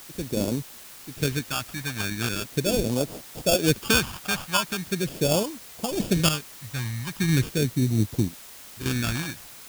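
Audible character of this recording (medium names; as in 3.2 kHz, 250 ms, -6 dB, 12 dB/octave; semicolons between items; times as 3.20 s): aliases and images of a low sample rate 2 kHz, jitter 0%; random-step tremolo, depth 75%; phasing stages 2, 0.4 Hz, lowest notch 400–1700 Hz; a quantiser's noise floor 8-bit, dither triangular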